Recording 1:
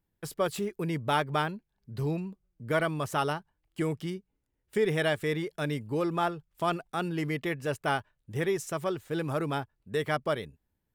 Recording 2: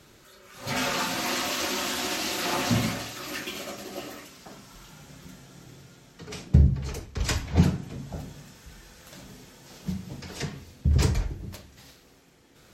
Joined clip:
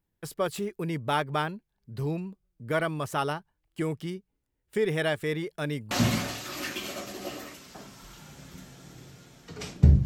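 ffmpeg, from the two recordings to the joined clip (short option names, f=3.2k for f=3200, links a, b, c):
-filter_complex "[0:a]apad=whole_dur=10.05,atrim=end=10.05,atrim=end=5.912[a];[1:a]atrim=start=2.618:end=6.76[b];[a][b]acrossfade=d=0.004:c1=hsin:c2=hsin"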